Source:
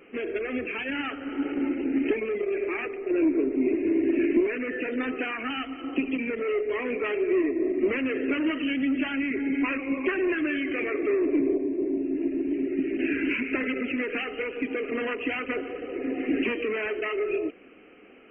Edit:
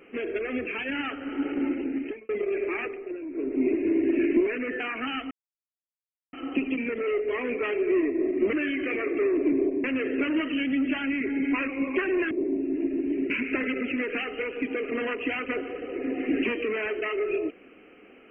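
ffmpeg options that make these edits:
-filter_complex "[0:a]asplit=10[s0][s1][s2][s3][s4][s5][s6][s7][s8][s9];[s0]atrim=end=2.29,asetpts=PTS-STARTPTS,afade=t=out:st=1.73:d=0.56[s10];[s1]atrim=start=2.29:end=3.19,asetpts=PTS-STARTPTS,afade=t=in:d=0.004:c=hsin,afade=t=out:st=0.58:d=0.32:silence=0.188365[s11];[s2]atrim=start=3.19:end=3.28,asetpts=PTS-STARTPTS,volume=0.188[s12];[s3]atrim=start=3.28:end=4.802,asetpts=PTS-STARTPTS,afade=t=in:d=0.32:silence=0.188365[s13];[s4]atrim=start=5.228:end=5.74,asetpts=PTS-STARTPTS,afade=t=out:st=0.508:d=0.004:c=hsin,apad=pad_dur=1.02[s14];[s5]atrim=start=5.74:end=7.942,asetpts=PTS-STARTPTS,afade=t=in:d=0.004:c=hsin[s15];[s6]atrim=start=10.408:end=11.722[s16];[s7]atrim=start=7.938:end=10.412[s17];[s8]atrim=start=11.718:end=12.712[s18];[s9]atrim=start=13.298[s19];[s10][s11][s12][s13]concat=n=4:v=0:a=1[s20];[s14][s15]concat=n=2:v=0:a=1[s21];[s20][s21]acrossfade=d=0.004:c1=hsin:c2=hsin[s22];[s22][s16]acrossfade=d=0.004:c1=hsin:c2=hsin[s23];[s23][s17]acrossfade=d=0.004:c1=hsin:c2=hsin[s24];[s24][s18]acrossfade=d=0.004:c1=hsin:c2=hsin[s25];[s25][s19]acrossfade=d=0.004:c1=hsin:c2=hsin"

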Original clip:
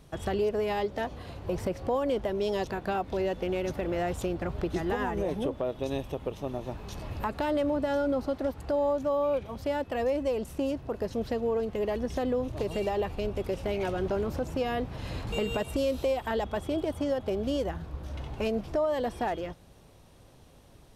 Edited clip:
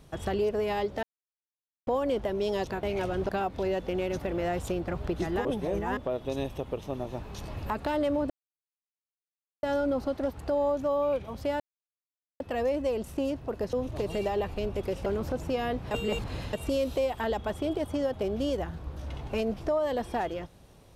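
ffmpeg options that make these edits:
-filter_complex "[0:a]asplit=13[s0][s1][s2][s3][s4][s5][s6][s7][s8][s9][s10][s11][s12];[s0]atrim=end=1.03,asetpts=PTS-STARTPTS,afade=t=out:st=1.026:d=0.004:c=hsin[s13];[s1]atrim=start=1.03:end=1.87,asetpts=PTS-STARTPTS,volume=0[s14];[s2]atrim=start=1.87:end=2.832,asetpts=PTS-STARTPTS,afade=t=in:d=0.004:c=hsin[s15];[s3]atrim=start=13.668:end=14.132[s16];[s4]atrim=start=2.828:end=4.992[s17];[s5]atrim=start=4.988:end=5.512,asetpts=PTS-STARTPTS,areverse[s18];[s6]atrim=start=5.508:end=7.84,asetpts=PTS-STARTPTS,afade=t=out:st=2.328:d=0.004:c=hsin,apad=pad_dur=1.33[s19];[s7]atrim=start=7.84:end=9.81,asetpts=PTS-STARTPTS,afade=t=in:d=0.004:c=hsin,afade=t=out:st=1.966:d=0.004:c=hsin,apad=pad_dur=0.8[s20];[s8]atrim=start=9.81:end=11.142,asetpts=PTS-STARTPTS,afade=t=in:d=0.004:c=hsin[s21];[s9]atrim=start=12.338:end=13.672[s22];[s10]atrim=start=14.128:end=14.982[s23];[s11]atrim=start=14.978:end=15.602,asetpts=PTS-STARTPTS,areverse[s24];[s12]atrim=start=15.598[s25];[s13][s14][s15]concat=n=3:v=0:a=1[s26];[s26][s16]acrossfade=d=0.004:c1=hsin:c2=hsin[s27];[s27][s17]acrossfade=d=0.004:c1=hsin:c2=hsin[s28];[s28][s18]acrossfade=d=0.004:c1=hsin:c2=hsin[s29];[s19][s20][s21]concat=n=3:v=0:a=1[s30];[s29][s30]acrossfade=d=0.004:c1=hsin:c2=hsin[s31];[s31][s22]acrossfade=d=0.004:c1=hsin:c2=hsin[s32];[s32][s23]acrossfade=d=0.004:c1=hsin:c2=hsin[s33];[s33][s24]acrossfade=d=0.004:c1=hsin:c2=hsin[s34];[s34][s25]acrossfade=d=0.004:c1=hsin:c2=hsin"

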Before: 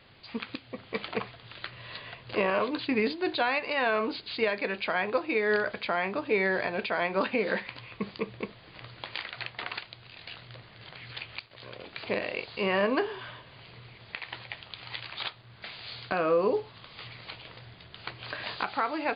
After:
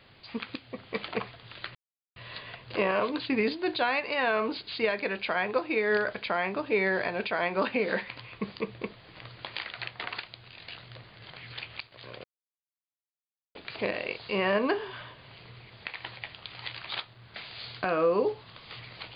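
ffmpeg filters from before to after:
-filter_complex "[0:a]asplit=3[s0][s1][s2];[s0]atrim=end=1.75,asetpts=PTS-STARTPTS,afade=t=out:st=1.746:d=0.004:c=hsin,apad=pad_dur=0.41[s3];[s1]atrim=start=1.75:end=11.83,asetpts=PTS-STARTPTS,afade=t=in:d=0.004:c=hsin,afade=t=out:st=10.076:d=0.004:c=hsin,apad=pad_dur=1.31[s4];[s2]atrim=start=11.83,asetpts=PTS-STARTPTS,afade=t=in:d=0.004:c=hsin[s5];[s3][s4][s5]concat=n=3:v=0:a=1"

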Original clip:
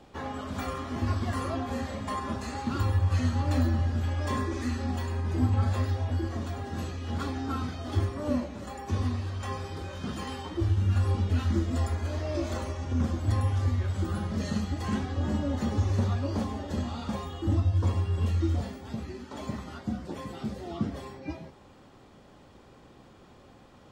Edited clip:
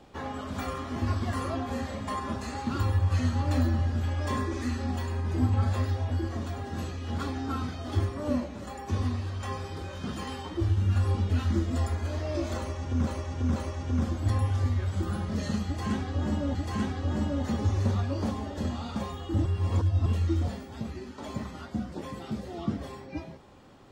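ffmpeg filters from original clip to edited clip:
-filter_complex "[0:a]asplit=6[s0][s1][s2][s3][s4][s5];[s0]atrim=end=13.072[s6];[s1]atrim=start=12.578:end=13.072[s7];[s2]atrim=start=12.578:end=15.572[s8];[s3]atrim=start=14.678:end=17.582[s9];[s4]atrim=start=17.578:end=18.192,asetpts=PTS-STARTPTS,areverse[s10];[s5]atrim=start=18.188[s11];[s6][s7]acrossfade=d=0.004:c1=hsin:c2=hsin[s12];[s12][s8]acrossfade=d=0.004:c1=hsin:c2=hsin[s13];[s13][s9]acrossfade=d=0.004:c1=hsin:c2=hsin[s14];[s14][s10]acrossfade=d=0.004:c1=hsin:c2=hsin[s15];[s15][s11]acrossfade=d=0.004:c1=hsin:c2=hsin"

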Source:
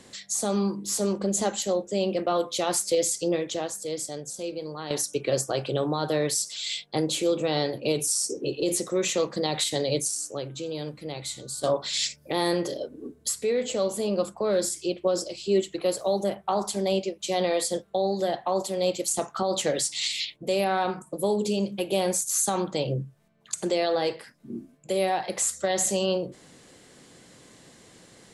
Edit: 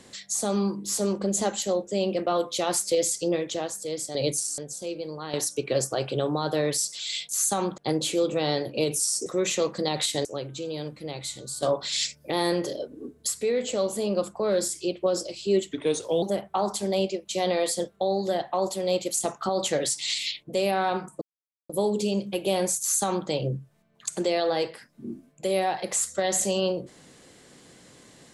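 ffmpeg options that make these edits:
-filter_complex "[0:a]asplit=10[s0][s1][s2][s3][s4][s5][s6][s7][s8][s9];[s0]atrim=end=4.152[s10];[s1]atrim=start=9.828:end=10.262[s11];[s2]atrim=start=4.148:end=6.862[s12];[s3]atrim=start=22.248:end=22.742[s13];[s4]atrim=start=6.858:end=8.342[s14];[s5]atrim=start=8.838:end=9.832[s15];[s6]atrim=start=10.258:end=15.744[s16];[s7]atrim=start=15.74:end=16.16,asetpts=PTS-STARTPTS,asetrate=37485,aresample=44100[s17];[s8]atrim=start=16.156:end=21.15,asetpts=PTS-STARTPTS,afade=t=out:st=4.99:d=0.004:c=hsin,apad=pad_dur=0.48[s18];[s9]atrim=start=21.15,asetpts=PTS-STARTPTS,afade=t=in:d=0.004:c=hsin[s19];[s10][s11]acrossfade=d=0.004:c1=hsin:c2=hsin[s20];[s20][s12]acrossfade=d=0.004:c1=hsin:c2=hsin[s21];[s21][s13]acrossfade=d=0.004:c1=hsin:c2=hsin[s22];[s22][s14]acrossfade=d=0.004:c1=hsin:c2=hsin[s23];[s23][s15]acrossfade=d=0.004:c1=hsin:c2=hsin[s24];[s24][s16]acrossfade=d=0.004:c1=hsin:c2=hsin[s25];[s25][s17]acrossfade=d=0.004:c1=hsin:c2=hsin[s26];[s18][s19]concat=n=2:v=0:a=1[s27];[s26][s27]acrossfade=d=0.004:c1=hsin:c2=hsin"

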